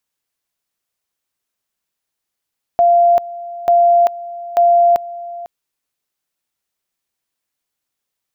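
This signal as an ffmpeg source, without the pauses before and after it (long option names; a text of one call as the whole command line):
ffmpeg -f lavfi -i "aevalsrc='pow(10,(-7.5-18*gte(mod(t,0.89),0.39))/20)*sin(2*PI*692*t)':duration=2.67:sample_rate=44100" out.wav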